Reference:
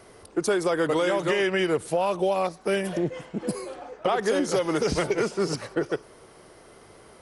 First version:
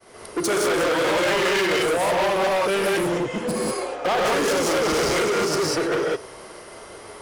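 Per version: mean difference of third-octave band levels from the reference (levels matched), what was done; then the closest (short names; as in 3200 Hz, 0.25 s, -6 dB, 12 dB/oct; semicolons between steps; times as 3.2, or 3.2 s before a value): 8.5 dB: non-linear reverb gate 0.22 s rising, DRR -3.5 dB; overloaded stage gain 24.5 dB; expander -46 dBFS; low shelf 290 Hz -7 dB; gain +7 dB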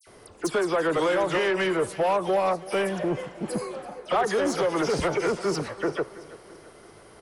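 5.5 dB: dispersion lows, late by 71 ms, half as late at 2700 Hz; soft clip -20 dBFS, distortion -15 dB; dynamic EQ 1000 Hz, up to +5 dB, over -39 dBFS, Q 0.72; on a send: feedback echo 0.335 s, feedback 52%, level -18 dB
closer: second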